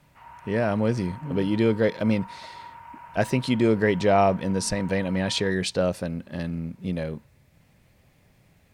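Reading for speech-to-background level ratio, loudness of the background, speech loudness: 19.5 dB, −44.5 LKFS, −25.0 LKFS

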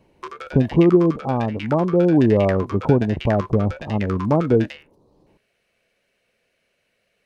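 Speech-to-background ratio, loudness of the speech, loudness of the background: 16.0 dB, −19.0 LKFS, −35.0 LKFS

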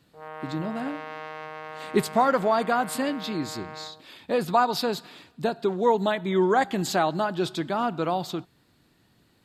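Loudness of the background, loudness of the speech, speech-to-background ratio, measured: −39.5 LKFS, −26.0 LKFS, 13.5 dB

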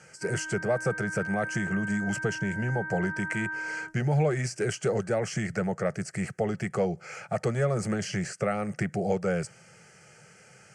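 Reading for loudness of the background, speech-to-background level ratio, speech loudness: −35.0 LKFS, 5.0 dB, −30.0 LKFS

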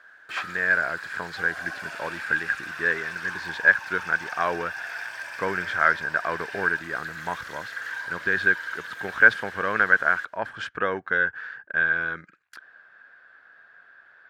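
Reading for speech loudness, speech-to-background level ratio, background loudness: −25.0 LKFS, 11.0 dB, −36.0 LKFS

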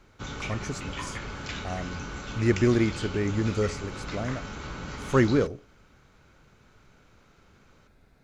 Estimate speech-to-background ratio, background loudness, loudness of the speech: 9.0 dB, −37.0 LKFS, −28.0 LKFS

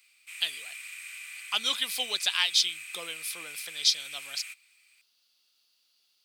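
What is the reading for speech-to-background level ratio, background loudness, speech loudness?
12.0 dB, −40.5 LKFS, −28.5 LKFS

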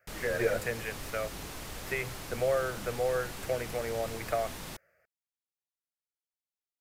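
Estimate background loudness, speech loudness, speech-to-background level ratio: −41.5 LKFS, −34.0 LKFS, 7.5 dB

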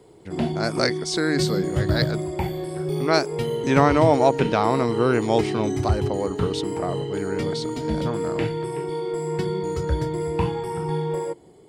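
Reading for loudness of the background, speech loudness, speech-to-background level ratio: −26.5 LKFS, −24.0 LKFS, 2.5 dB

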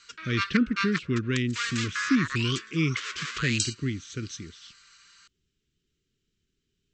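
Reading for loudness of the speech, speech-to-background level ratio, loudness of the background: −29.5 LKFS, 2.0 dB, −31.5 LKFS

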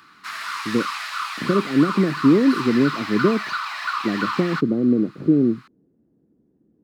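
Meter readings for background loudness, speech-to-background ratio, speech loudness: −27.5 LKFS, 7.0 dB, −20.5 LKFS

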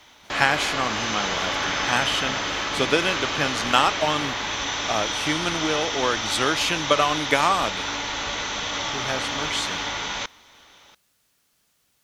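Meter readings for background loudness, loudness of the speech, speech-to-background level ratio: −26.0 LKFS, −24.5 LKFS, 1.5 dB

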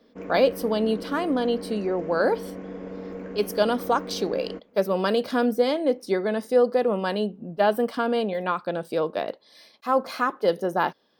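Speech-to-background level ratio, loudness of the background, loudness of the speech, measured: 12.0 dB, −37.0 LKFS, −25.0 LKFS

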